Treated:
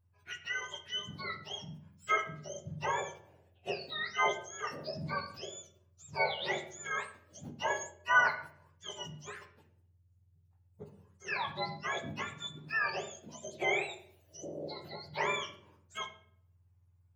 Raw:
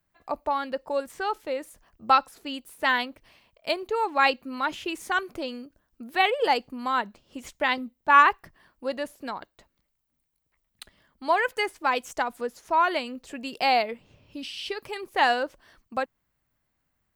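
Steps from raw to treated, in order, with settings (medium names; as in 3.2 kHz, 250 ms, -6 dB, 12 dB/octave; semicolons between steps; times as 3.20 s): spectrum inverted on a logarithmic axis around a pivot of 1.3 kHz; 7.64–8.15 s: rippled EQ curve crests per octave 1.4, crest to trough 9 dB; reverberation RT60 0.60 s, pre-delay 7 ms, DRR 4.5 dB; trim -8.5 dB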